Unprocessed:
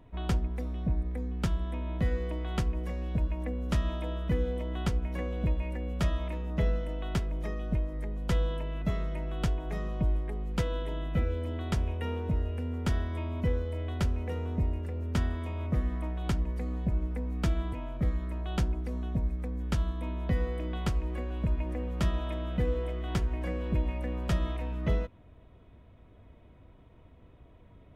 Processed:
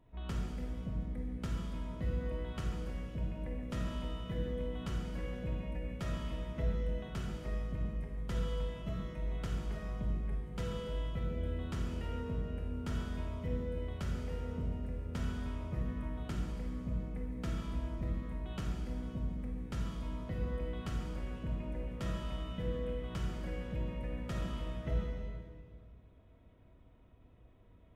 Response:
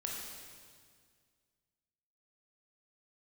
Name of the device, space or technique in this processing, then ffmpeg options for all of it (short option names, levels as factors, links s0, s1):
stairwell: -filter_complex "[1:a]atrim=start_sample=2205[s0];[0:a][s0]afir=irnorm=-1:irlink=0,volume=0.398"